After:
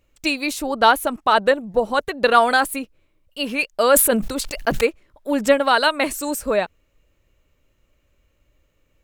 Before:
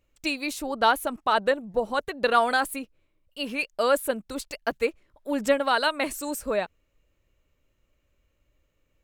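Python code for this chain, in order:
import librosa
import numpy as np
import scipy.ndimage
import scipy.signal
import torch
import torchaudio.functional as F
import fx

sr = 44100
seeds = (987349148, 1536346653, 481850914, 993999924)

y = fx.sustainer(x, sr, db_per_s=53.0, at=(3.91, 4.81))
y = y * librosa.db_to_amplitude(6.5)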